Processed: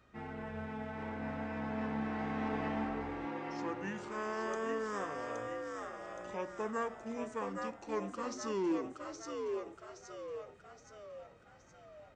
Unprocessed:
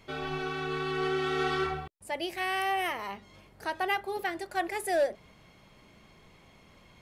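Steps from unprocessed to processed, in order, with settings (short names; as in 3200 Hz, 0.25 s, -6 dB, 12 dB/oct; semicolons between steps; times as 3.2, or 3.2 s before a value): HPF 62 Hz; frequency-shifting echo 0.473 s, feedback 50%, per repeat +120 Hz, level -4.5 dB; speed mistake 78 rpm record played at 45 rpm; gain -8 dB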